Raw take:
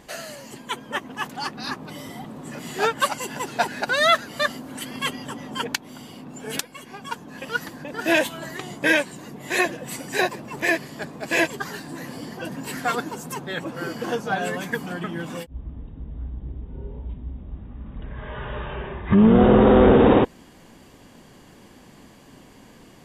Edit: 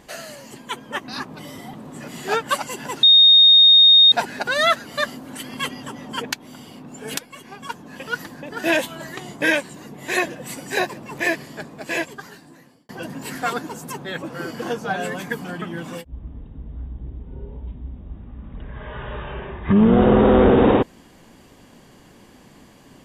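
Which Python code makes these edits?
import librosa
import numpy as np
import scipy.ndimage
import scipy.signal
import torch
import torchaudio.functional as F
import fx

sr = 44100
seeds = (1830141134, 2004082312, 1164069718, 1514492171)

y = fx.edit(x, sr, fx.cut(start_s=1.08, length_s=0.51),
    fx.insert_tone(at_s=3.54, length_s=1.09, hz=3700.0, db=-7.5),
    fx.fade_out_span(start_s=10.86, length_s=1.45), tone=tone)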